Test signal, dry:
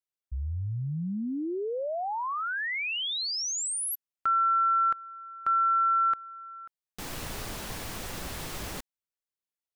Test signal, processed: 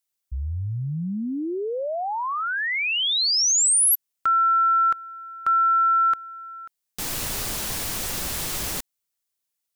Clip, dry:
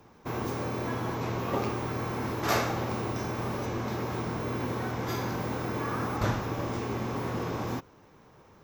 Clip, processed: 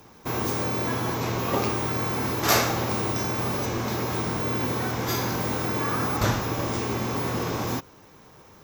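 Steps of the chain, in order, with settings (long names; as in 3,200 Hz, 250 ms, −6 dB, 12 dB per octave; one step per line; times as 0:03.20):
high-shelf EQ 3,800 Hz +10.5 dB
level +4 dB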